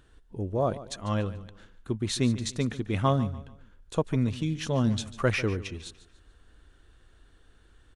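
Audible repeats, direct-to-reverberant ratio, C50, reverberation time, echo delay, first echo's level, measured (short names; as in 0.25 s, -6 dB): 3, none, none, none, 0.145 s, -16.0 dB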